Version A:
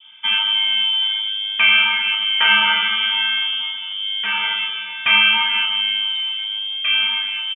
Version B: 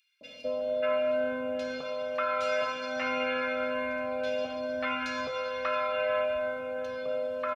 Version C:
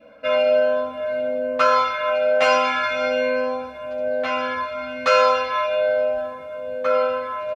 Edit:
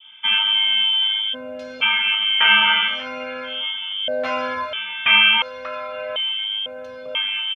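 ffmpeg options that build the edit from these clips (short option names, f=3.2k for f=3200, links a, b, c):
-filter_complex "[1:a]asplit=4[a][b][c][d];[0:a]asplit=6[e][f][g][h][i][j];[e]atrim=end=1.35[k];[a]atrim=start=1.33:end=1.83[l];[f]atrim=start=1.81:end=3.07[m];[b]atrim=start=2.83:end=3.67[n];[g]atrim=start=3.43:end=4.082[o];[2:a]atrim=start=4.078:end=4.732[p];[h]atrim=start=4.728:end=5.422[q];[c]atrim=start=5.418:end=6.162[r];[i]atrim=start=6.158:end=6.662[s];[d]atrim=start=6.658:end=7.152[t];[j]atrim=start=7.148[u];[k][l]acrossfade=d=0.02:c1=tri:c2=tri[v];[v][m]acrossfade=d=0.02:c1=tri:c2=tri[w];[w][n]acrossfade=d=0.24:c1=tri:c2=tri[x];[x][o]acrossfade=d=0.24:c1=tri:c2=tri[y];[y][p]acrossfade=d=0.004:c1=hsin:c2=hsin[z];[z][q]acrossfade=d=0.004:c1=hsin:c2=hsin[aa];[aa][r]acrossfade=d=0.004:c1=hsin:c2=hsin[ab];[ab][s]acrossfade=d=0.004:c1=hsin:c2=hsin[ac];[ac][t]acrossfade=d=0.004:c1=hsin:c2=hsin[ad];[ad][u]acrossfade=d=0.004:c1=hsin:c2=hsin"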